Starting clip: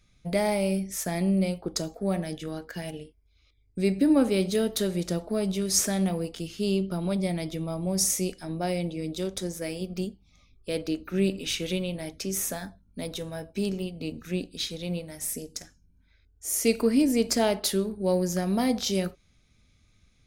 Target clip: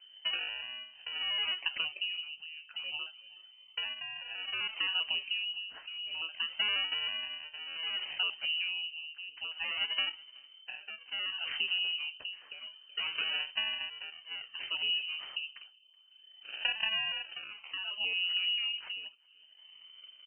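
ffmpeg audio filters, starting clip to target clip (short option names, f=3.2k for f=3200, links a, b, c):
-af "tiltshelf=f=1.1k:g=8.5,alimiter=limit=-14dB:level=0:latency=1:release=65,acompressor=threshold=-30dB:ratio=5,aresample=16000,acrusher=samples=10:mix=1:aa=0.000001:lfo=1:lforange=16:lforate=0.31,aresample=44100,lowpass=f=2.6k:t=q:w=0.5098,lowpass=f=2.6k:t=q:w=0.6013,lowpass=f=2.6k:t=q:w=0.9,lowpass=f=2.6k:t=q:w=2.563,afreqshift=-3100,aecho=1:1:375|750|1125:0.0631|0.0265|0.0111,tremolo=f=0.6:d=0.77"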